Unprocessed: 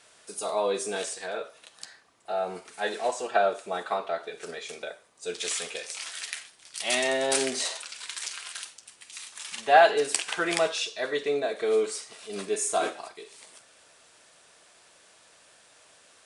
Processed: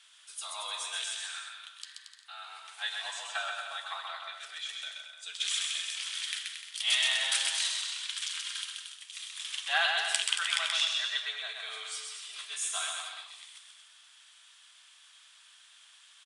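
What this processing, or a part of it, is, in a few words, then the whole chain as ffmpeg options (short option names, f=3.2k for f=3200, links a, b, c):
headphones lying on a table: -filter_complex "[0:a]highpass=f=1.1k:w=0.5412,highpass=f=1.1k:w=1.3066,equalizer=f=3.3k:t=o:w=0.41:g=11.5,asettb=1/sr,asplit=3[a][b][c];[a]atrim=end=1.174[d];[b]atrim=start=1.17:end=2.49,asetpts=PTS-STARTPTS,afade=t=in:d=0.004:c=qsin,afade=t=out:st=1.316:d=0.004:c=qsin,highpass=f=910:w=0.5412,highpass=f=910:w=1.3066[e];[c]atrim=start=2.486[f];[d][e]acrossfade=d=0.004:c1=hsin:c2=qsin[g];[g][f]acrossfade=d=0.004:c1=qsin:c2=hsin,aecho=1:1:130|227.5|300.6|355.5|396.6:0.631|0.398|0.251|0.158|0.1,volume=-5dB"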